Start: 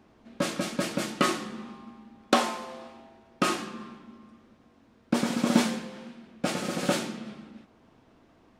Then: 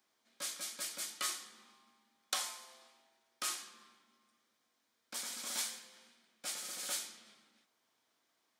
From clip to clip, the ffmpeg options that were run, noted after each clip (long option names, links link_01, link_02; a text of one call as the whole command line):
ffmpeg -i in.wav -filter_complex "[0:a]aderivative,bandreject=frequency=2700:width=10,acrossover=split=490|2700[link_01][link_02][link_03];[link_01]alimiter=level_in=23dB:limit=-24dB:level=0:latency=1:release=395,volume=-23dB[link_04];[link_04][link_02][link_03]amix=inputs=3:normalize=0,volume=-1dB" out.wav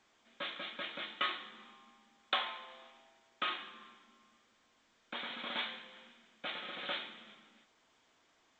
ffmpeg -i in.wav -af "aresample=8000,aresample=44100,volume=7dB" -ar 16000 -c:a pcm_alaw out.wav